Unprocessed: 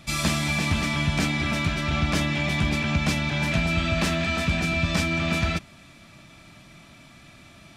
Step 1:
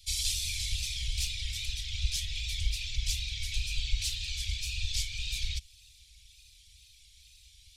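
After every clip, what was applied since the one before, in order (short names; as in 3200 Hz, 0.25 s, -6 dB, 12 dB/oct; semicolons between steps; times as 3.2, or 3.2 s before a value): wow and flutter 86 cents; whisperiser; inverse Chebyshev band-stop 240–1000 Hz, stop band 70 dB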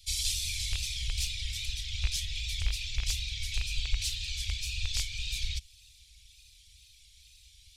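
rattling part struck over -28 dBFS, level -25 dBFS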